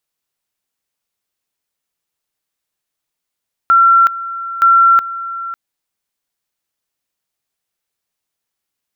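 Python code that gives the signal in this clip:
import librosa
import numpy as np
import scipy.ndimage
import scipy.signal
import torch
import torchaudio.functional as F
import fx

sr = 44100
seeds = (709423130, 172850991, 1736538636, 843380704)

y = fx.two_level_tone(sr, hz=1360.0, level_db=-5.5, drop_db=15.5, high_s=0.37, low_s=0.55, rounds=2)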